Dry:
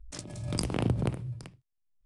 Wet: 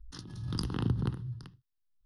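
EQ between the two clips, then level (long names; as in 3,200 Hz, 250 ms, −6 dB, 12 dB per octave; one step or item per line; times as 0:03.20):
phaser with its sweep stopped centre 2,300 Hz, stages 6
−1.0 dB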